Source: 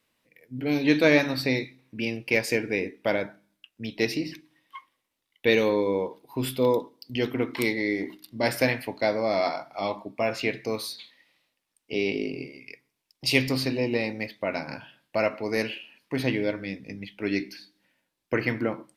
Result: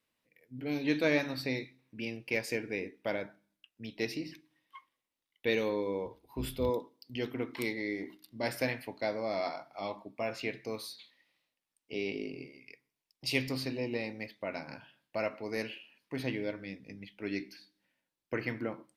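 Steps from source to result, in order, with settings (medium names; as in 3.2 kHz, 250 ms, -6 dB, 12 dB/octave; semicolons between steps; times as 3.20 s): 6.05–6.70 s: octave divider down 2 oct, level -3 dB; trim -9 dB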